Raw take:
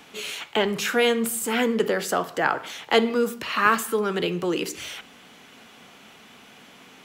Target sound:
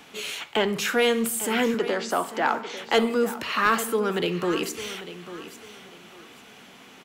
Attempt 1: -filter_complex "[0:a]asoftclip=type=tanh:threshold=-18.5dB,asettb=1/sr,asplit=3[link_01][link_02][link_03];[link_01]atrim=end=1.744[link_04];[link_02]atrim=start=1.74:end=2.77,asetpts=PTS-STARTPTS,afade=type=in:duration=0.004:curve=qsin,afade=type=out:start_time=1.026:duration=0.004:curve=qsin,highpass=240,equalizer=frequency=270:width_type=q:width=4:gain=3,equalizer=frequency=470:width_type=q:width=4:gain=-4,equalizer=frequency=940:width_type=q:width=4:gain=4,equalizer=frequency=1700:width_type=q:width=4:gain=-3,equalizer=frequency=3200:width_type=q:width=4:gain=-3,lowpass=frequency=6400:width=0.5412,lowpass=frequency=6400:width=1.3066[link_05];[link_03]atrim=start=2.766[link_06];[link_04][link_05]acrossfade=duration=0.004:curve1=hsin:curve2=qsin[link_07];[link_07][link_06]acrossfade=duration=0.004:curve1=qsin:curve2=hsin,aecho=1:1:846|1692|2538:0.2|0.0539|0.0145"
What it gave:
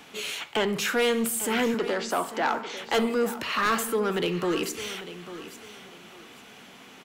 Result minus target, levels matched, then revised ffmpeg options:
soft clipping: distortion +8 dB
-filter_complex "[0:a]asoftclip=type=tanh:threshold=-11dB,asettb=1/sr,asplit=3[link_01][link_02][link_03];[link_01]atrim=end=1.744[link_04];[link_02]atrim=start=1.74:end=2.77,asetpts=PTS-STARTPTS,afade=type=in:duration=0.004:curve=qsin,afade=type=out:start_time=1.026:duration=0.004:curve=qsin,highpass=240,equalizer=frequency=270:width_type=q:width=4:gain=3,equalizer=frequency=470:width_type=q:width=4:gain=-4,equalizer=frequency=940:width_type=q:width=4:gain=4,equalizer=frequency=1700:width_type=q:width=4:gain=-3,equalizer=frequency=3200:width_type=q:width=4:gain=-3,lowpass=frequency=6400:width=0.5412,lowpass=frequency=6400:width=1.3066[link_05];[link_03]atrim=start=2.766[link_06];[link_04][link_05]acrossfade=duration=0.004:curve1=hsin:curve2=qsin[link_07];[link_07][link_06]acrossfade=duration=0.004:curve1=qsin:curve2=hsin,aecho=1:1:846|1692|2538:0.2|0.0539|0.0145"

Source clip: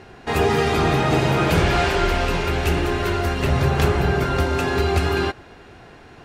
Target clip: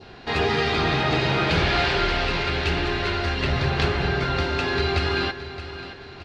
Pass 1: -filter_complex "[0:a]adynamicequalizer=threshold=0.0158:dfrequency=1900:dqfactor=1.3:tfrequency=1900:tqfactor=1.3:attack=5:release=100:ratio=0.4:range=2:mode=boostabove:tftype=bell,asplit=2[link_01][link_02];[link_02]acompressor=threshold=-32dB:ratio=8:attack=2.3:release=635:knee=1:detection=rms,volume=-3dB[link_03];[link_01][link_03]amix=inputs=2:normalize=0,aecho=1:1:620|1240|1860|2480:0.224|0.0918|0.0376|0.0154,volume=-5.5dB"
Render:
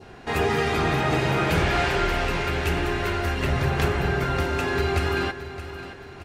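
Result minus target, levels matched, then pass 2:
4,000 Hz band −5.0 dB
-filter_complex "[0:a]adynamicequalizer=threshold=0.0158:dfrequency=1900:dqfactor=1.3:tfrequency=1900:tqfactor=1.3:attack=5:release=100:ratio=0.4:range=2:mode=boostabove:tftype=bell,lowpass=frequency=4300:width_type=q:width=2.7,asplit=2[link_01][link_02];[link_02]acompressor=threshold=-32dB:ratio=8:attack=2.3:release=635:knee=1:detection=rms,volume=-3dB[link_03];[link_01][link_03]amix=inputs=2:normalize=0,aecho=1:1:620|1240|1860|2480:0.224|0.0918|0.0376|0.0154,volume=-5.5dB"

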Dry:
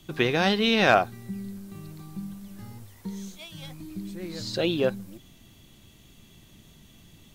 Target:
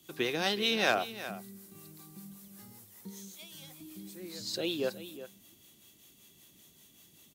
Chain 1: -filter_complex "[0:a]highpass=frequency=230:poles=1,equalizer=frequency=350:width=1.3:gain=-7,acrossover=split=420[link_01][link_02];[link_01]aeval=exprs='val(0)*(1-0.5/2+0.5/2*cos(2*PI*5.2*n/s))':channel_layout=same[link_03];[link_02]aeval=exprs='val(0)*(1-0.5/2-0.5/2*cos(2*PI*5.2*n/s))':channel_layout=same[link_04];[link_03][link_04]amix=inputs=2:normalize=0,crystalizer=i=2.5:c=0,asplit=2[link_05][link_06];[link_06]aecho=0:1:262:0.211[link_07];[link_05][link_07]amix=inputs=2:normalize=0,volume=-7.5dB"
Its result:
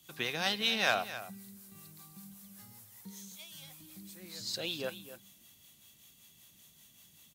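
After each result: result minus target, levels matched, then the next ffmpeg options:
echo 106 ms early; 250 Hz band −4.5 dB
-filter_complex "[0:a]highpass=frequency=230:poles=1,equalizer=frequency=350:width=1.3:gain=-7,acrossover=split=420[link_01][link_02];[link_01]aeval=exprs='val(0)*(1-0.5/2+0.5/2*cos(2*PI*5.2*n/s))':channel_layout=same[link_03];[link_02]aeval=exprs='val(0)*(1-0.5/2-0.5/2*cos(2*PI*5.2*n/s))':channel_layout=same[link_04];[link_03][link_04]amix=inputs=2:normalize=0,crystalizer=i=2.5:c=0,asplit=2[link_05][link_06];[link_06]aecho=0:1:368:0.211[link_07];[link_05][link_07]amix=inputs=2:normalize=0,volume=-7.5dB"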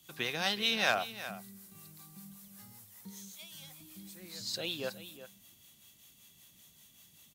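250 Hz band −4.5 dB
-filter_complex "[0:a]highpass=frequency=230:poles=1,equalizer=frequency=350:width=1.3:gain=4,acrossover=split=420[link_01][link_02];[link_01]aeval=exprs='val(0)*(1-0.5/2+0.5/2*cos(2*PI*5.2*n/s))':channel_layout=same[link_03];[link_02]aeval=exprs='val(0)*(1-0.5/2-0.5/2*cos(2*PI*5.2*n/s))':channel_layout=same[link_04];[link_03][link_04]amix=inputs=2:normalize=0,crystalizer=i=2.5:c=0,asplit=2[link_05][link_06];[link_06]aecho=0:1:368:0.211[link_07];[link_05][link_07]amix=inputs=2:normalize=0,volume=-7.5dB"

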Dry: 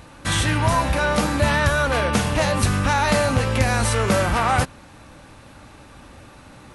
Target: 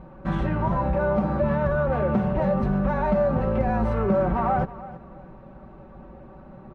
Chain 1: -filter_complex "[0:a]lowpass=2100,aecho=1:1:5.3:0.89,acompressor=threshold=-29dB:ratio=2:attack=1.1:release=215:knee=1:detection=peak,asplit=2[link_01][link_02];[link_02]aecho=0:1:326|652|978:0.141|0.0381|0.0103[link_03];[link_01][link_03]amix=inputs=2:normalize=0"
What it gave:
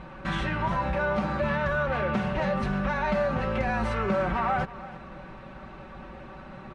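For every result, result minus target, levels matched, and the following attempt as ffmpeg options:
2,000 Hz band +9.0 dB; downward compressor: peak gain reduction +5.5 dB
-filter_complex "[0:a]lowpass=790,aecho=1:1:5.3:0.89,acompressor=threshold=-29dB:ratio=2:attack=1.1:release=215:knee=1:detection=peak,asplit=2[link_01][link_02];[link_02]aecho=0:1:326|652|978:0.141|0.0381|0.0103[link_03];[link_01][link_03]amix=inputs=2:normalize=0"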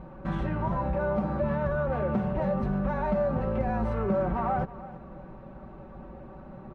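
downward compressor: peak gain reduction +5 dB
-filter_complex "[0:a]lowpass=790,aecho=1:1:5.3:0.89,acompressor=threshold=-19dB:ratio=2:attack=1.1:release=215:knee=1:detection=peak,asplit=2[link_01][link_02];[link_02]aecho=0:1:326|652|978:0.141|0.0381|0.0103[link_03];[link_01][link_03]amix=inputs=2:normalize=0"

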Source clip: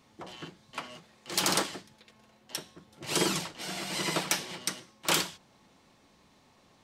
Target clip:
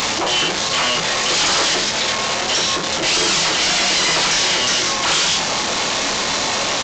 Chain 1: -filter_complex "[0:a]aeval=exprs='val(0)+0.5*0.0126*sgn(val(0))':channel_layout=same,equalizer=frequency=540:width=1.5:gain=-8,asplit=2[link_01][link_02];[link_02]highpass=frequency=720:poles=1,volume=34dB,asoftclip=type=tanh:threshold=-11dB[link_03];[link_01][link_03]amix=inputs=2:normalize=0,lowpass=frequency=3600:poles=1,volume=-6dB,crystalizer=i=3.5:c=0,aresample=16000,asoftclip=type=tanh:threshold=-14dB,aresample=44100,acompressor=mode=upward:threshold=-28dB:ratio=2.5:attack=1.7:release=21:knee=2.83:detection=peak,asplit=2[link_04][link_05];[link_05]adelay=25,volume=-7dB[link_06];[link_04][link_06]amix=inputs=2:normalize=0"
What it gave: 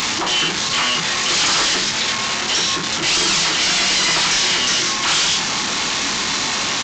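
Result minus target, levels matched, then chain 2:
500 Hz band −5.5 dB
-filter_complex "[0:a]aeval=exprs='val(0)+0.5*0.0126*sgn(val(0))':channel_layout=same,equalizer=frequency=540:width=1.5:gain=3,asplit=2[link_01][link_02];[link_02]highpass=frequency=720:poles=1,volume=34dB,asoftclip=type=tanh:threshold=-11dB[link_03];[link_01][link_03]amix=inputs=2:normalize=0,lowpass=frequency=3600:poles=1,volume=-6dB,crystalizer=i=3.5:c=0,aresample=16000,asoftclip=type=tanh:threshold=-14dB,aresample=44100,acompressor=mode=upward:threshold=-28dB:ratio=2.5:attack=1.7:release=21:knee=2.83:detection=peak,asplit=2[link_04][link_05];[link_05]adelay=25,volume=-7dB[link_06];[link_04][link_06]amix=inputs=2:normalize=0"

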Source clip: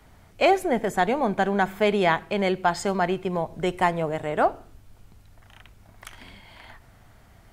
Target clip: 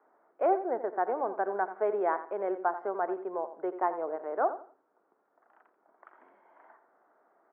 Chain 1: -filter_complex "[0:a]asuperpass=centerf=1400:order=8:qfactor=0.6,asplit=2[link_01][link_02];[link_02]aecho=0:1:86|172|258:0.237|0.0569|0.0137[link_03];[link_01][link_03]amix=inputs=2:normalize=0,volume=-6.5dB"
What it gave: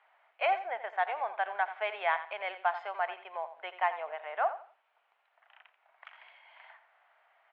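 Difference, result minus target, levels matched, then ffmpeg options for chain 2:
500 Hz band −4.5 dB
-filter_complex "[0:a]asuperpass=centerf=690:order=8:qfactor=0.6,asplit=2[link_01][link_02];[link_02]aecho=0:1:86|172|258:0.237|0.0569|0.0137[link_03];[link_01][link_03]amix=inputs=2:normalize=0,volume=-6.5dB"

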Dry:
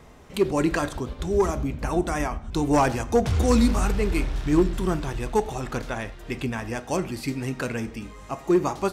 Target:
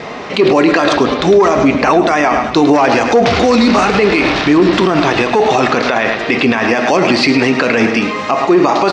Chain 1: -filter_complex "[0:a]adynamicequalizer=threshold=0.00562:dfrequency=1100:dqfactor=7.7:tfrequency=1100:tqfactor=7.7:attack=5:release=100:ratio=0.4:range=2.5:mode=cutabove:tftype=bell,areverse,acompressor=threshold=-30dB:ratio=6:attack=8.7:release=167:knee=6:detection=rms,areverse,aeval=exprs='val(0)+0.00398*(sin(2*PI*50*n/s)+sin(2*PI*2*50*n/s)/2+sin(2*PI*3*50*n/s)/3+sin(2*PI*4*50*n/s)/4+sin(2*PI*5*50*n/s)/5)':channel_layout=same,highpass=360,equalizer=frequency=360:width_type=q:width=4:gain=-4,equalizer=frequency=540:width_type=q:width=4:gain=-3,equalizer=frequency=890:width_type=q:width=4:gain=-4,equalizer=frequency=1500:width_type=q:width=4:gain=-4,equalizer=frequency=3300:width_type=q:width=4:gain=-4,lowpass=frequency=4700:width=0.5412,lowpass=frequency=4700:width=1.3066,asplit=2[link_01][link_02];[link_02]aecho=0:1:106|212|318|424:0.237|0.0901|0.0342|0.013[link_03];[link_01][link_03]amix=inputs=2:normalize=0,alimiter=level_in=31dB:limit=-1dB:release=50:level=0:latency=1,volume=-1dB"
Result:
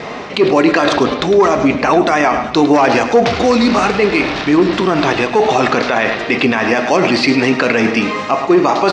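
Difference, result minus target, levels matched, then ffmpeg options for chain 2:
downward compressor: peak gain reduction +7 dB
-filter_complex "[0:a]adynamicequalizer=threshold=0.00562:dfrequency=1100:dqfactor=7.7:tfrequency=1100:tqfactor=7.7:attack=5:release=100:ratio=0.4:range=2.5:mode=cutabove:tftype=bell,areverse,acompressor=threshold=-21.5dB:ratio=6:attack=8.7:release=167:knee=6:detection=rms,areverse,aeval=exprs='val(0)+0.00398*(sin(2*PI*50*n/s)+sin(2*PI*2*50*n/s)/2+sin(2*PI*3*50*n/s)/3+sin(2*PI*4*50*n/s)/4+sin(2*PI*5*50*n/s)/5)':channel_layout=same,highpass=360,equalizer=frequency=360:width_type=q:width=4:gain=-4,equalizer=frequency=540:width_type=q:width=4:gain=-3,equalizer=frequency=890:width_type=q:width=4:gain=-4,equalizer=frequency=1500:width_type=q:width=4:gain=-4,equalizer=frequency=3300:width_type=q:width=4:gain=-4,lowpass=frequency=4700:width=0.5412,lowpass=frequency=4700:width=1.3066,asplit=2[link_01][link_02];[link_02]aecho=0:1:106|212|318|424:0.237|0.0901|0.0342|0.013[link_03];[link_01][link_03]amix=inputs=2:normalize=0,alimiter=level_in=31dB:limit=-1dB:release=50:level=0:latency=1,volume=-1dB"

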